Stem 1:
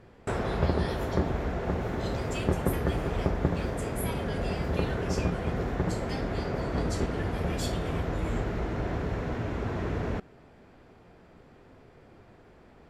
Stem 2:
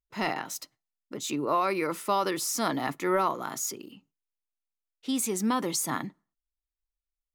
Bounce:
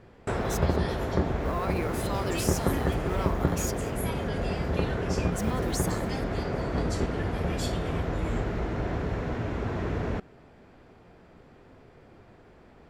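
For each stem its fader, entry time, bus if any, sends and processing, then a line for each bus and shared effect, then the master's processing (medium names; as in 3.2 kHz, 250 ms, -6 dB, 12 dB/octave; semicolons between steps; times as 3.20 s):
+1.0 dB, 0.00 s, no send, no echo send, treble shelf 11 kHz -4 dB
0.0 dB, 0.00 s, no send, echo send -18.5 dB, peak limiter -25 dBFS, peak gain reduction 10.5 dB; companded quantiser 6-bit; attacks held to a fixed rise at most 230 dB/s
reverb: none
echo: feedback delay 191 ms, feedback 53%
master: none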